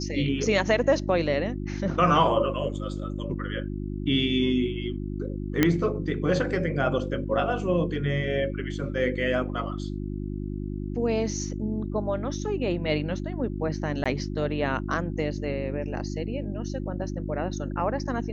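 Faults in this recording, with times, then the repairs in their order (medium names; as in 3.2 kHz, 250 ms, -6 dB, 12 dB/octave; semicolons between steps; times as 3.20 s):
hum 50 Hz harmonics 7 -32 dBFS
5.63 s: pop -6 dBFS
14.04–14.06 s: dropout 16 ms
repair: de-click; de-hum 50 Hz, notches 7; interpolate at 14.04 s, 16 ms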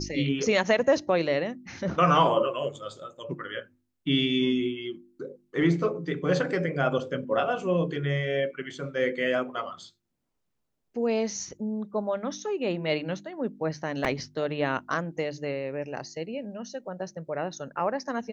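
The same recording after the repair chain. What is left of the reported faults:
nothing left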